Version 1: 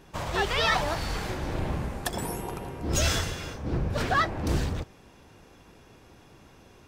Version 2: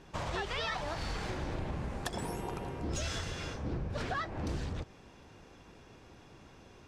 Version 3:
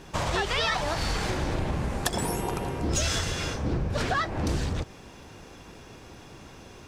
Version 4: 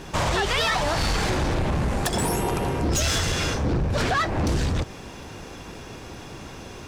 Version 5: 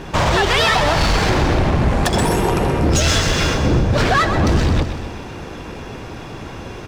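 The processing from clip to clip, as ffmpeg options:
ffmpeg -i in.wav -af "lowpass=7800,acompressor=threshold=-31dB:ratio=6,volume=-2dB" out.wav
ffmpeg -i in.wav -af "crystalizer=i=1:c=0,volume=8.5dB" out.wav
ffmpeg -i in.wav -filter_complex "[0:a]asplit=2[link_01][link_02];[link_02]alimiter=limit=-20dB:level=0:latency=1:release=38,volume=-0.5dB[link_03];[link_01][link_03]amix=inputs=2:normalize=0,asoftclip=type=tanh:threshold=-19.5dB,volume=2dB" out.wav
ffmpeg -i in.wav -filter_complex "[0:a]asplit=2[link_01][link_02];[link_02]adynamicsmooth=sensitivity=6.5:basefreq=4000,volume=2.5dB[link_03];[link_01][link_03]amix=inputs=2:normalize=0,aecho=1:1:127|254|381|508|635|762|889:0.335|0.194|0.113|0.0654|0.0379|0.022|0.0128" out.wav

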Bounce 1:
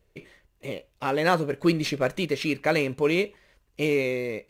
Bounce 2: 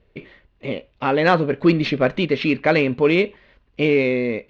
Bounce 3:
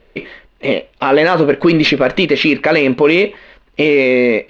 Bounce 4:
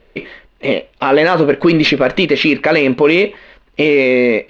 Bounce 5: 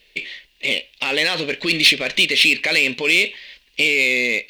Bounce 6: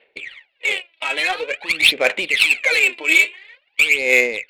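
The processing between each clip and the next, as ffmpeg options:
ffmpeg -i in.wav -af "lowpass=frequency=3900:width=0.5412,lowpass=frequency=3900:width=1.3066,equalizer=frequency=240:width_type=o:width=0.22:gain=8.5,acontrast=70" out.wav
ffmpeg -i in.wav -af "equalizer=frequency=90:width_type=o:width=1.9:gain=-14.5,alimiter=level_in=14.5dB:limit=-1dB:release=50:level=0:latency=1,volume=-1dB" out.wav
ffmpeg -i in.wav -af anull out.wav
ffmpeg -i in.wav -af "aexciter=amount=7.1:drive=9:freq=2000,volume=-14.5dB" out.wav
ffmpeg -i in.wav -af "highpass=430,equalizer=frequency=520:width_type=q:width=4:gain=5,equalizer=frequency=810:width_type=q:width=4:gain=9,equalizer=frequency=1400:width_type=q:width=4:gain=7,equalizer=frequency=2300:width_type=q:width=4:gain=6,lowpass=frequency=4700:width=0.5412,lowpass=frequency=4700:width=1.3066,aphaser=in_gain=1:out_gain=1:delay=3.1:decay=0.78:speed=0.48:type=sinusoidal,adynamicsmooth=sensitivity=0.5:basefreq=2400,volume=-6.5dB" out.wav

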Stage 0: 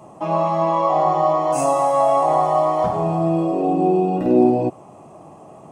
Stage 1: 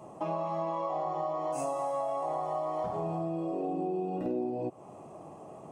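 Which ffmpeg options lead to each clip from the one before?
ffmpeg -i in.wav -af "equalizer=frequency=450:width=1.5:gain=3.5,acompressor=threshold=-24dB:ratio=6,volume=-6.5dB" out.wav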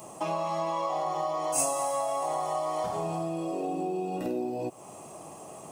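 ffmpeg -i in.wav -af "crystalizer=i=8:c=0" out.wav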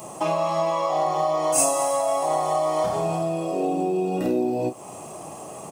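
ffmpeg -i in.wav -filter_complex "[0:a]asplit=2[link_01][link_02];[link_02]adelay=32,volume=-8.5dB[link_03];[link_01][link_03]amix=inputs=2:normalize=0,volume=6.5dB" out.wav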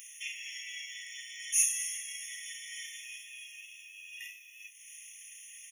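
ffmpeg -i in.wav -af "afftfilt=real='re*eq(mod(floor(b*sr/1024/1800),2),1)':imag='im*eq(mod(floor(b*sr/1024/1800),2),1)':win_size=1024:overlap=0.75" out.wav

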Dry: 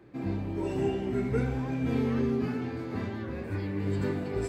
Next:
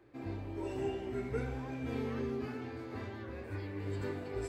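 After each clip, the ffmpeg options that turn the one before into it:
ffmpeg -i in.wav -af "equalizer=frequency=180:width_type=o:width=0.7:gain=-13,volume=-5.5dB" out.wav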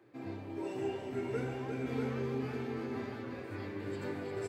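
ffmpeg -i in.wav -filter_complex "[0:a]highpass=frequency=110:width=0.5412,highpass=frequency=110:width=1.3066,asplit=2[link_01][link_02];[link_02]aecho=0:1:352|643:0.422|0.562[link_03];[link_01][link_03]amix=inputs=2:normalize=0" out.wav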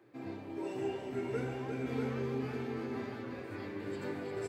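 ffmpeg -i in.wav -af "equalizer=frequency=98:width=7.3:gain=-6" out.wav

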